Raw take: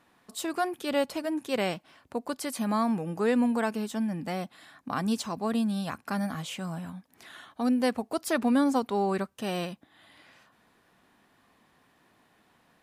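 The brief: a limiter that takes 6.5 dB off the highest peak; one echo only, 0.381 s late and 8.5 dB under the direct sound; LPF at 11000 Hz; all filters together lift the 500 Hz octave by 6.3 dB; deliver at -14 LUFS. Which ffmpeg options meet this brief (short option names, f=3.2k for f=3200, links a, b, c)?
-af "lowpass=11k,equalizer=f=500:t=o:g=7.5,alimiter=limit=-17.5dB:level=0:latency=1,aecho=1:1:381:0.376,volume=14.5dB"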